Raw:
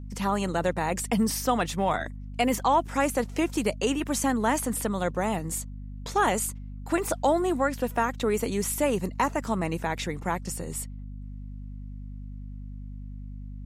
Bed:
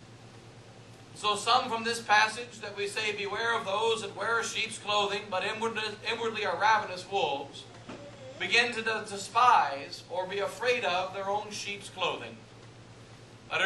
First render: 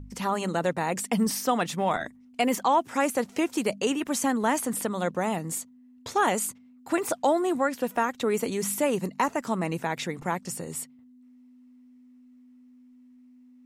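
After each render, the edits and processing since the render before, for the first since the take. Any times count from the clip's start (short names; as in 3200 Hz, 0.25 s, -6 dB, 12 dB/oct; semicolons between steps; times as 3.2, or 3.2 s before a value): de-hum 50 Hz, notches 4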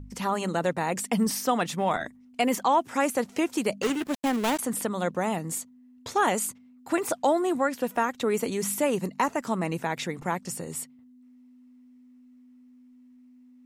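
3.82–4.59 switching dead time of 0.24 ms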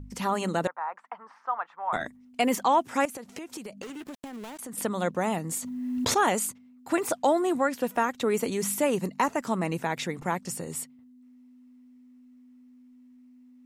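0.67–1.93 Butterworth band-pass 1100 Hz, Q 1.7; 3.05–4.78 compressor 16:1, threshold -35 dBFS; 5.6–6.17 backwards sustainer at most 24 dB/s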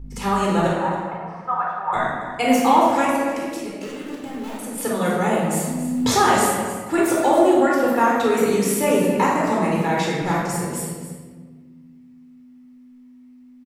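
echo 0.277 s -12.5 dB; shoebox room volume 1400 m³, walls mixed, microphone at 4.1 m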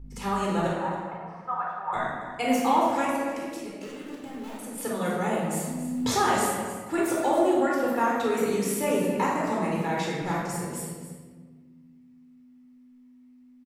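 gain -7 dB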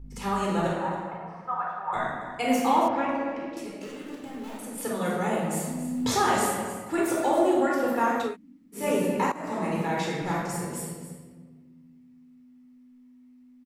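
2.88–3.57 air absorption 240 m; 8.29–8.8 room tone, crossfade 0.16 s; 9.32–9.86 fade in equal-power, from -16 dB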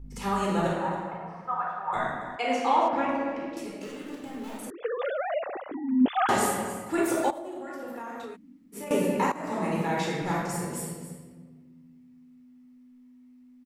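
2.36–2.93 BPF 380–5000 Hz; 4.7–6.29 sine-wave speech; 7.3–8.91 compressor 12:1, threshold -34 dBFS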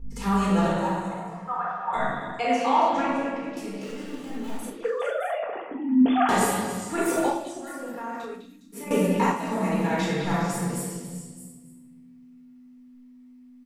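delay with a stepping band-pass 0.205 s, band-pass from 3700 Hz, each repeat 0.7 oct, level -5 dB; shoebox room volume 420 m³, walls furnished, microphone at 1.7 m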